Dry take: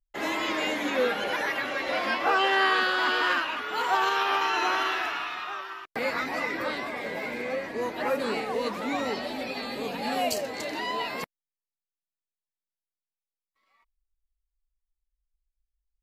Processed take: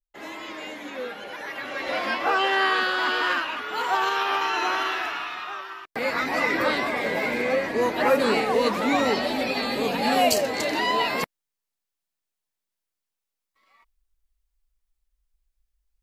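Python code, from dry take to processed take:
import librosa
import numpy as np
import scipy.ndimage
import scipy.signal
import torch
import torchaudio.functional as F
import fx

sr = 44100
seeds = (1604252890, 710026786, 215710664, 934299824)

y = fx.gain(x, sr, db=fx.line((1.36, -8.0), (1.88, 1.0), (5.92, 1.0), (6.53, 7.5)))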